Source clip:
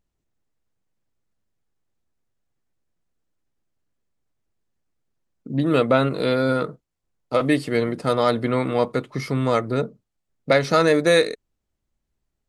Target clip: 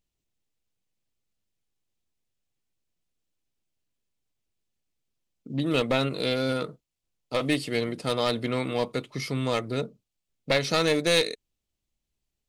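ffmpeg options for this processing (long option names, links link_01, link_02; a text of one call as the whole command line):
ffmpeg -i in.wav -af "aeval=exprs='clip(val(0),-1,0.158)':channel_layout=same,highshelf=frequency=2100:width_type=q:width=1.5:gain=6.5,volume=-6dB" out.wav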